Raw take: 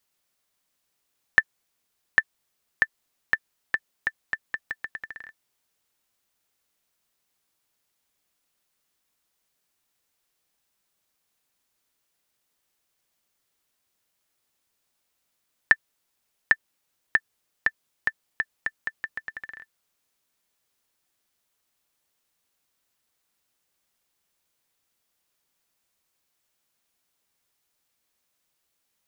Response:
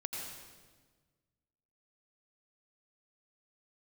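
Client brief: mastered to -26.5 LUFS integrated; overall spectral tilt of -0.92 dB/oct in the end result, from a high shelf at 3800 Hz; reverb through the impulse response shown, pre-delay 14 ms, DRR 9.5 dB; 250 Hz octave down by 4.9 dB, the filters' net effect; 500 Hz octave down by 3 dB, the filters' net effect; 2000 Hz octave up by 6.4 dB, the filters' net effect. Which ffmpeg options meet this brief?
-filter_complex "[0:a]equalizer=f=250:t=o:g=-6,equalizer=f=500:t=o:g=-3,equalizer=f=2k:t=o:g=6.5,highshelf=f=3.8k:g=5,asplit=2[a][b];[1:a]atrim=start_sample=2205,adelay=14[c];[b][c]afir=irnorm=-1:irlink=0,volume=-10.5dB[d];[a][d]amix=inputs=2:normalize=0,volume=-4.5dB"

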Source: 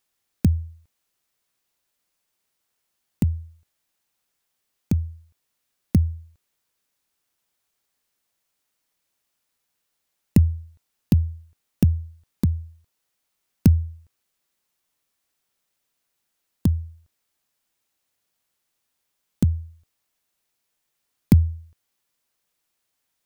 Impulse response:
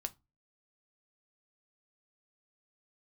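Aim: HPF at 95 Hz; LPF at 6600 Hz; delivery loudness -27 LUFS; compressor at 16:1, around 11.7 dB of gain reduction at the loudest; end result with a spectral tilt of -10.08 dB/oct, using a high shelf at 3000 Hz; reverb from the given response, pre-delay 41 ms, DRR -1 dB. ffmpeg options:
-filter_complex "[0:a]highpass=95,lowpass=6.6k,highshelf=f=3k:g=6,acompressor=threshold=-22dB:ratio=16,asplit=2[a][b];[1:a]atrim=start_sample=2205,adelay=41[c];[b][c]afir=irnorm=-1:irlink=0,volume=2.5dB[d];[a][d]amix=inputs=2:normalize=0,volume=3.5dB"

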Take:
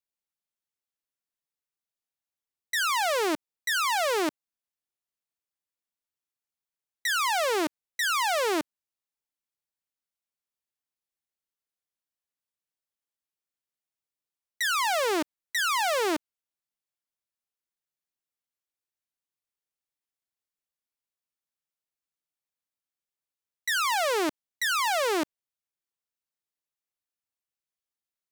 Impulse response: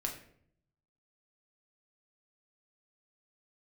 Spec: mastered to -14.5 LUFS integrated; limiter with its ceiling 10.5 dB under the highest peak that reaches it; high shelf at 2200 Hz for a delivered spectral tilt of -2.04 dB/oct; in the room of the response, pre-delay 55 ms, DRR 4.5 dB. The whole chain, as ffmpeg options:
-filter_complex "[0:a]highshelf=f=2.2k:g=-4.5,alimiter=level_in=7.5dB:limit=-24dB:level=0:latency=1,volume=-7.5dB,asplit=2[a][b];[1:a]atrim=start_sample=2205,adelay=55[c];[b][c]afir=irnorm=-1:irlink=0,volume=-6dB[d];[a][d]amix=inputs=2:normalize=0,volume=22.5dB"

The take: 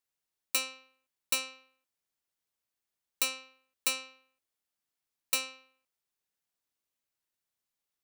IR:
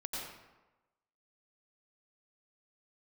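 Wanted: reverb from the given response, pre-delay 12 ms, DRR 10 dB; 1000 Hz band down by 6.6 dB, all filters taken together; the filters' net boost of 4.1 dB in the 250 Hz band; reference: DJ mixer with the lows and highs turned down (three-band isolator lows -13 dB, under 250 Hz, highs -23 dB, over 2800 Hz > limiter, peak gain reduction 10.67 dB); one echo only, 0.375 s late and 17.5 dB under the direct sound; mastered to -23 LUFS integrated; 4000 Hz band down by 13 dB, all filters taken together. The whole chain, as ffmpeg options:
-filter_complex "[0:a]equalizer=f=250:t=o:g=8.5,equalizer=f=1k:t=o:g=-8.5,equalizer=f=4k:t=o:g=-4.5,aecho=1:1:375:0.133,asplit=2[a][b];[1:a]atrim=start_sample=2205,adelay=12[c];[b][c]afir=irnorm=-1:irlink=0,volume=-11.5dB[d];[a][d]amix=inputs=2:normalize=0,acrossover=split=250 2800:gain=0.224 1 0.0708[e][f][g];[e][f][g]amix=inputs=3:normalize=0,volume=27.5dB,alimiter=limit=-9.5dB:level=0:latency=1"

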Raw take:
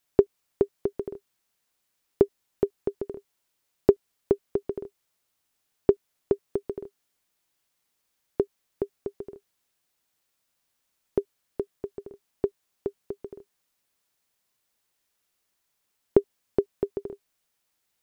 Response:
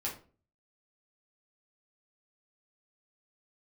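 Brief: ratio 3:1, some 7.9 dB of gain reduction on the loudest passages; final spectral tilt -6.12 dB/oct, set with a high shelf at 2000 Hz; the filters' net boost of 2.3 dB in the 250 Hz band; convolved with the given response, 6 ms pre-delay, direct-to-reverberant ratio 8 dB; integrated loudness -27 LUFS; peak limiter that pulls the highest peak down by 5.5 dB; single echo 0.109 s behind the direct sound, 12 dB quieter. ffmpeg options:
-filter_complex "[0:a]equalizer=f=250:t=o:g=3.5,highshelf=f=2k:g=8,acompressor=threshold=-24dB:ratio=3,alimiter=limit=-12.5dB:level=0:latency=1,aecho=1:1:109:0.251,asplit=2[a][b];[1:a]atrim=start_sample=2205,adelay=6[c];[b][c]afir=irnorm=-1:irlink=0,volume=-10.5dB[d];[a][d]amix=inputs=2:normalize=0,volume=10dB"

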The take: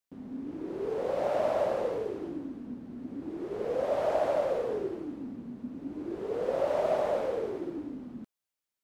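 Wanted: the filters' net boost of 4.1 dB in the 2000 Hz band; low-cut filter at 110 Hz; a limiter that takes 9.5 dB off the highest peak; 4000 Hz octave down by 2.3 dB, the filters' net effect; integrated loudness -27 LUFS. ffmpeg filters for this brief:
-af "highpass=110,equalizer=f=2k:t=o:g=6.5,equalizer=f=4k:t=o:g=-6,volume=8.5dB,alimiter=limit=-17dB:level=0:latency=1"

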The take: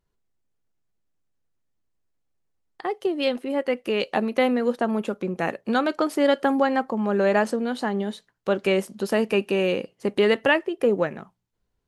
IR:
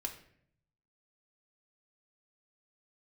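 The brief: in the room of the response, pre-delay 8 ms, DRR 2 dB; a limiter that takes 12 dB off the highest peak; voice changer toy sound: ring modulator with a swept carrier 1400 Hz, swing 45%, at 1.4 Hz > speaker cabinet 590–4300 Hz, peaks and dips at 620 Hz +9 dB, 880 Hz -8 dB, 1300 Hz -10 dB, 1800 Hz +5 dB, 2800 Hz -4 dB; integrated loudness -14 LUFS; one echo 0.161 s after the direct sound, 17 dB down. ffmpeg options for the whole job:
-filter_complex "[0:a]alimiter=limit=-19dB:level=0:latency=1,aecho=1:1:161:0.141,asplit=2[a][b];[1:a]atrim=start_sample=2205,adelay=8[c];[b][c]afir=irnorm=-1:irlink=0,volume=-1.5dB[d];[a][d]amix=inputs=2:normalize=0,aeval=exprs='val(0)*sin(2*PI*1400*n/s+1400*0.45/1.4*sin(2*PI*1.4*n/s))':c=same,highpass=590,equalizer=f=620:t=q:w=4:g=9,equalizer=f=880:t=q:w=4:g=-8,equalizer=f=1.3k:t=q:w=4:g=-10,equalizer=f=1.8k:t=q:w=4:g=5,equalizer=f=2.8k:t=q:w=4:g=-4,lowpass=f=4.3k:w=0.5412,lowpass=f=4.3k:w=1.3066,volume=15dB"

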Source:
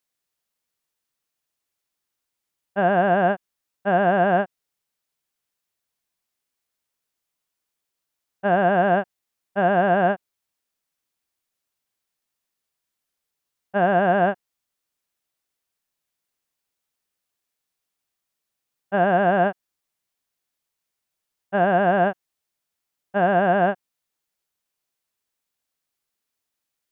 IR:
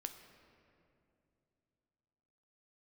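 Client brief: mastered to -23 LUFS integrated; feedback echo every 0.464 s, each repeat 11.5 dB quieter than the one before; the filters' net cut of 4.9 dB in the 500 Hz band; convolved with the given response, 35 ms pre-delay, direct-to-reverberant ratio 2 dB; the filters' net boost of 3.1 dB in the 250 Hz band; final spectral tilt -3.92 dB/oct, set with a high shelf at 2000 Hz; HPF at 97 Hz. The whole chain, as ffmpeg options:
-filter_complex "[0:a]highpass=97,equalizer=f=250:t=o:g=7.5,equalizer=f=500:t=o:g=-8.5,highshelf=f=2k:g=-4.5,aecho=1:1:464|928|1392:0.266|0.0718|0.0194,asplit=2[a][b];[1:a]atrim=start_sample=2205,adelay=35[c];[b][c]afir=irnorm=-1:irlink=0,volume=1dB[d];[a][d]amix=inputs=2:normalize=0,volume=-2dB"

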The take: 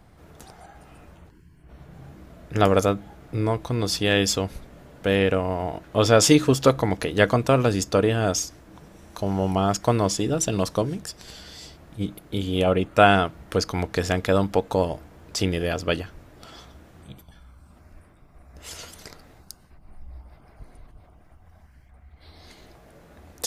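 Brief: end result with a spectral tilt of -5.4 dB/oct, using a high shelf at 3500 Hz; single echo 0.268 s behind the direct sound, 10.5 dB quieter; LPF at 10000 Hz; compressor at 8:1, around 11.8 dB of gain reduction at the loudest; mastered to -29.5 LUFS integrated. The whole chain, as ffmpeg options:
-af "lowpass=10k,highshelf=f=3.5k:g=-6,acompressor=threshold=-23dB:ratio=8,aecho=1:1:268:0.299"

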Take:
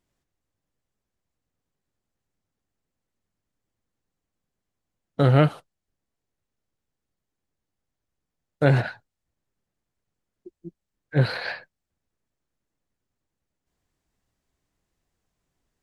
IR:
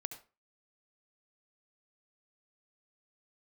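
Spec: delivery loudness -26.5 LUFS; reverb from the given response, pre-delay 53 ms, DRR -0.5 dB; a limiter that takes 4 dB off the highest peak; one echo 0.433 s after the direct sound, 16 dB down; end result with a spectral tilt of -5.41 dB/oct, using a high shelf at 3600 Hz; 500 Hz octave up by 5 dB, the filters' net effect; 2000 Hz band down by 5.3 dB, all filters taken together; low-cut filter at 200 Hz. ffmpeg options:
-filter_complex "[0:a]highpass=200,equalizer=f=500:t=o:g=6.5,equalizer=f=2k:t=o:g=-6.5,highshelf=f=3.6k:g=-6.5,alimiter=limit=-8.5dB:level=0:latency=1,aecho=1:1:433:0.158,asplit=2[a][b];[1:a]atrim=start_sample=2205,adelay=53[c];[b][c]afir=irnorm=-1:irlink=0,volume=2.5dB[d];[a][d]amix=inputs=2:normalize=0,volume=-4dB"

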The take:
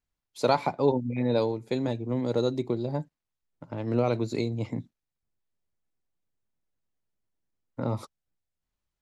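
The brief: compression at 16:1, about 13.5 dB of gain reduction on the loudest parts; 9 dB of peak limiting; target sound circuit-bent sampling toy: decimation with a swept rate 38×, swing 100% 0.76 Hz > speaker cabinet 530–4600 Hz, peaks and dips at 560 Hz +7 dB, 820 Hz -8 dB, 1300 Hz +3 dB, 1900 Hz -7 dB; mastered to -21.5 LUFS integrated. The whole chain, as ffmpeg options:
-af "acompressor=threshold=-31dB:ratio=16,alimiter=level_in=4.5dB:limit=-24dB:level=0:latency=1,volume=-4.5dB,acrusher=samples=38:mix=1:aa=0.000001:lfo=1:lforange=38:lforate=0.76,highpass=530,equalizer=f=560:t=q:w=4:g=7,equalizer=f=820:t=q:w=4:g=-8,equalizer=f=1.3k:t=q:w=4:g=3,equalizer=f=1.9k:t=q:w=4:g=-7,lowpass=f=4.6k:w=0.5412,lowpass=f=4.6k:w=1.3066,volume=22.5dB"

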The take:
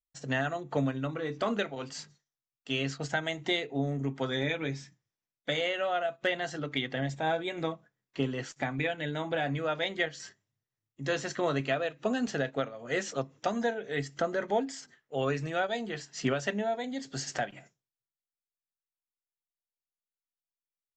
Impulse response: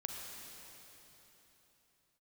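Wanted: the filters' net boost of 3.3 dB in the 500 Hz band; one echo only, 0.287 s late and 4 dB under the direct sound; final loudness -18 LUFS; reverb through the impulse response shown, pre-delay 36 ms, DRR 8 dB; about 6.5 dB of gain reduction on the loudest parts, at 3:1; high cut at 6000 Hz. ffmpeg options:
-filter_complex "[0:a]lowpass=6k,equalizer=f=500:t=o:g=4,acompressor=threshold=-31dB:ratio=3,aecho=1:1:287:0.631,asplit=2[a][b];[1:a]atrim=start_sample=2205,adelay=36[c];[b][c]afir=irnorm=-1:irlink=0,volume=-8dB[d];[a][d]amix=inputs=2:normalize=0,volume=15.5dB"

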